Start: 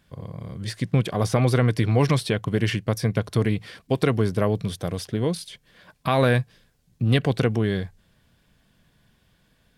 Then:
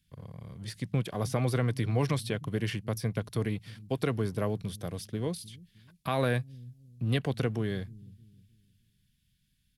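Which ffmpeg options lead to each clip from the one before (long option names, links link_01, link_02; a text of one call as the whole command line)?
ffmpeg -i in.wav -filter_complex "[0:a]equalizer=frequency=11000:width=3.9:gain=7.5,acrossover=split=230|2100[link_01][link_02][link_03];[link_01]aecho=1:1:310|620|930|1240:0.2|0.0738|0.0273|0.0101[link_04];[link_02]aeval=exprs='sgn(val(0))*max(abs(val(0))-0.00266,0)':channel_layout=same[link_05];[link_04][link_05][link_03]amix=inputs=3:normalize=0,volume=-8.5dB" out.wav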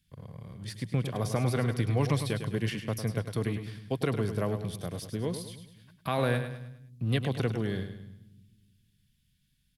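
ffmpeg -i in.wav -af "aecho=1:1:103|206|309|412|515:0.355|0.153|0.0656|0.0282|0.0121" out.wav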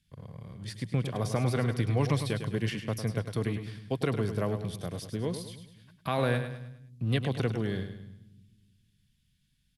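ffmpeg -i in.wav -af "lowpass=11000" out.wav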